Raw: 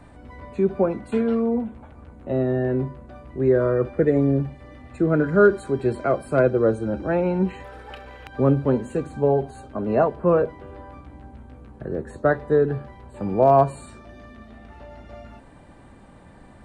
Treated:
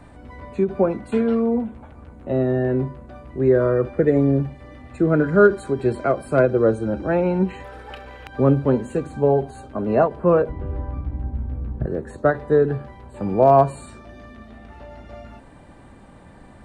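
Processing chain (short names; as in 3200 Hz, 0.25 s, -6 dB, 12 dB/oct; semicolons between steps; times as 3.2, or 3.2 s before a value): 10.49–11.86 RIAA curve playback; ending taper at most 270 dB/s; gain +2 dB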